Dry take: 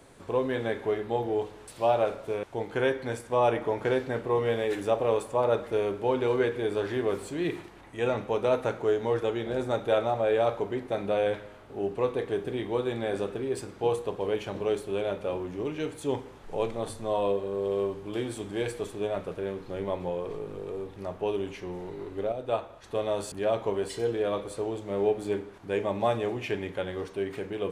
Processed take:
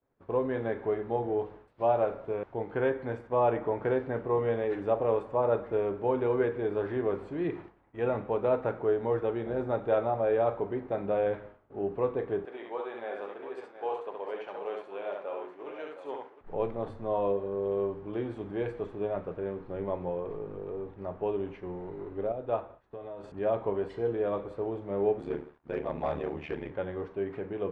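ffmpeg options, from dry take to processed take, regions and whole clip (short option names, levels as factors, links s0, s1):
-filter_complex "[0:a]asettb=1/sr,asplit=3[s0][s1][s2];[s0]atrim=end=12.454[s3];[s1]atrim=start=12.45:end=16.41,asetpts=PTS-STARTPTS,afade=t=in:d=0.004:c=qsin,afade=t=out:st=3.956:d=0.004:c=qsin,highpass=660,aecho=1:1:69|713:0.668|0.335,atrim=end_sample=174636[s4];[s2]atrim=start=16.406[s5];[s3][s4]acrossfade=d=0.004:c1=hsin:c2=qsin[s6];[s6][s5]acrossfade=d=0.004:c1=qsin:c2=hsin,asettb=1/sr,asplit=3[s7][s8][s9];[s7]atrim=end=22.804[s10];[s8]atrim=start=22.8:end=23.24,asetpts=PTS-STARTPTS,afade=t=in:d=0.004:c=qsin,afade=t=out:st=0.436:d=0.004:c=qsin,asplit=2[s11][s12];[s12]adelay=16,volume=0.398[s13];[s11][s13]amix=inputs=2:normalize=0,atrim=end_sample=19404,acompressor=threshold=0.0126:ratio=4:attack=3.2:release=140:knee=1:detection=peak[s14];[s9]atrim=start=23.236[s15];[s10][s14]acrossfade=d=0.004:c1=hsin:c2=qsin[s16];[s16][s15]acrossfade=d=0.004:c1=qsin:c2=hsin,asettb=1/sr,asplit=3[s17][s18][s19];[s17]atrim=end=25.194[s20];[s18]atrim=start=25.19:end=26.71,asetpts=PTS-STARTPTS,afade=t=in:d=0.004:c=qsin,afade=t=out:st=1.516:d=0.004:c=qsin,highshelf=f=2400:g=9,aeval=exprs='val(0)*sin(2*PI*37*n/s)':c=same,asoftclip=type=hard:threshold=0.075[s21];[s19]atrim=start=26.706[s22];[s20][s21]acrossfade=d=0.004:c1=hsin:c2=qsin[s23];[s23][s22]acrossfade=d=0.004:c1=qsin:c2=hsin,lowpass=1600,agate=range=0.0224:threshold=0.00891:ratio=3:detection=peak,volume=0.841"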